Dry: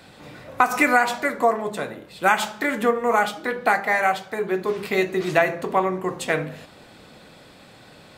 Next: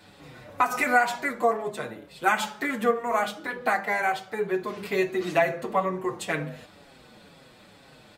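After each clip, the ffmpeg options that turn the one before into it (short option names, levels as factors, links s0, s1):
-filter_complex "[0:a]asplit=2[s0][s1];[s1]adelay=6.3,afreqshift=-2.1[s2];[s0][s2]amix=inputs=2:normalize=1,volume=0.841"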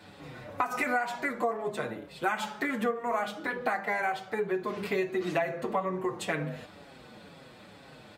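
-af "highpass=53,highshelf=f=3900:g=-6,acompressor=threshold=0.0316:ratio=3,volume=1.26"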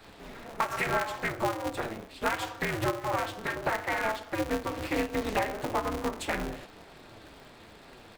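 -af "aeval=exprs='val(0)*sgn(sin(2*PI*110*n/s))':c=same"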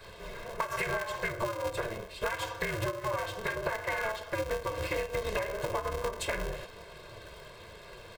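-af "aecho=1:1:1.9:0.91,acompressor=threshold=0.0355:ratio=6"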